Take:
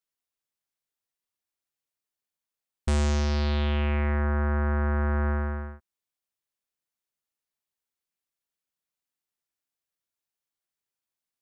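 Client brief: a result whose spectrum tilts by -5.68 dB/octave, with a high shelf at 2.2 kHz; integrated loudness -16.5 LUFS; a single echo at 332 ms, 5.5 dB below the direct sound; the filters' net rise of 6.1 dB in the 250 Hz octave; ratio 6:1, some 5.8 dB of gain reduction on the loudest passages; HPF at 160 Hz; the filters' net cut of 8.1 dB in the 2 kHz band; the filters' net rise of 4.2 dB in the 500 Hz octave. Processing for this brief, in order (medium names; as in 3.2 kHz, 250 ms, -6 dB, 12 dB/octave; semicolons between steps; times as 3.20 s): high-pass 160 Hz; peaking EQ 250 Hz +8 dB; peaking EQ 500 Hz +3.5 dB; peaking EQ 2 kHz -7.5 dB; treble shelf 2.2 kHz -7.5 dB; compression 6:1, threshold -28 dBFS; delay 332 ms -5.5 dB; trim +15 dB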